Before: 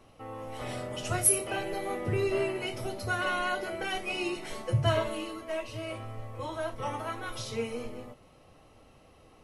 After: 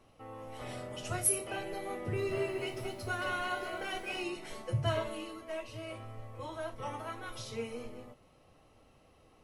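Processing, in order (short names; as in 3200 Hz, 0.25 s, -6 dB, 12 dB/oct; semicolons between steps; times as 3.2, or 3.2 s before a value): 1.95–4.24 lo-fi delay 0.222 s, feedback 35%, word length 9-bit, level -7 dB; gain -5.5 dB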